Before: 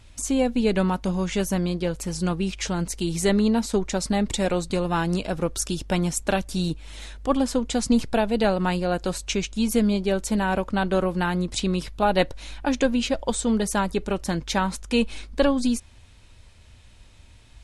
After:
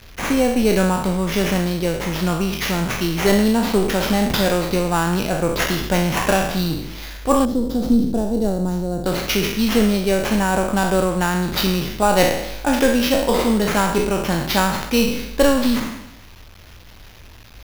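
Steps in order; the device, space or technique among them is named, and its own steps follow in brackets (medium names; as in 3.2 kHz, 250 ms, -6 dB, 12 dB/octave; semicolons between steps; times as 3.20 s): spectral sustain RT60 0.83 s; early 8-bit sampler (sample-rate reducer 8.5 kHz, jitter 0%; bit crusher 8-bit); 7.45–9.06 s: FFT filter 320 Hz 0 dB, 2.5 kHz -26 dB, 3.9 kHz -12 dB; trim +3.5 dB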